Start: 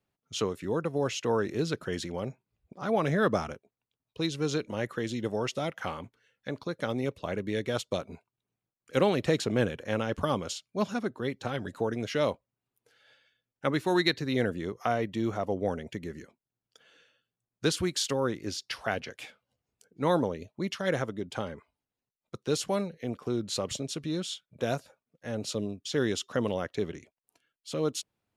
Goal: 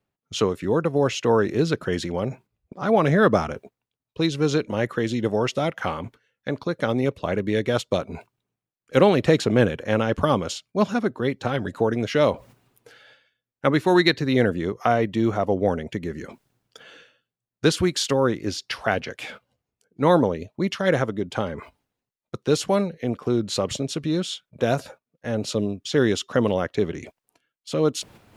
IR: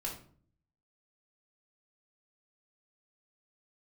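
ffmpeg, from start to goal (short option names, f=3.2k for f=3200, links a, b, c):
-af "agate=range=-10dB:threshold=-55dB:ratio=16:detection=peak,highshelf=f=3.9k:g=-6,areverse,acompressor=mode=upward:threshold=-39dB:ratio=2.5,areverse,volume=8.5dB"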